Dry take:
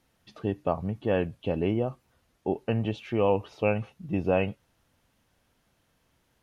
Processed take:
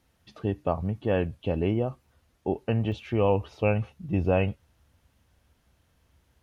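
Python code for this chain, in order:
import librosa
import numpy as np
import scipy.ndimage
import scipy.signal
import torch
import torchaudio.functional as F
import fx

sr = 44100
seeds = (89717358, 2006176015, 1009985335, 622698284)

y = fx.peak_eq(x, sr, hz=69.0, db=fx.steps((0.0, 9.0), (2.92, 15.0)), octaves=0.9)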